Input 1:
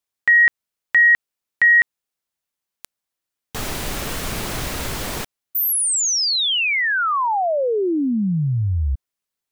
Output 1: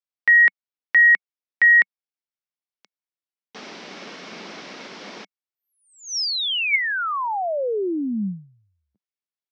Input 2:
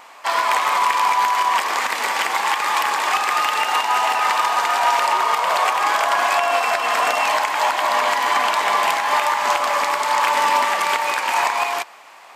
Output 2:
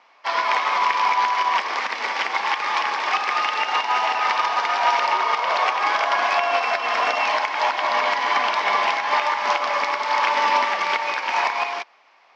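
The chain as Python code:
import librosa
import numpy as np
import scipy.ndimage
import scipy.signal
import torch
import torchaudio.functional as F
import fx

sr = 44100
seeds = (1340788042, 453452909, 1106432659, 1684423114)

y = scipy.signal.sosfilt(scipy.signal.cheby1(4, 1.0, [190.0, 5600.0], 'bandpass', fs=sr, output='sos'), x)
y = fx.small_body(y, sr, hz=(2200.0,), ring_ms=45, db=7)
y = fx.upward_expand(y, sr, threshold_db=-38.0, expansion=1.5)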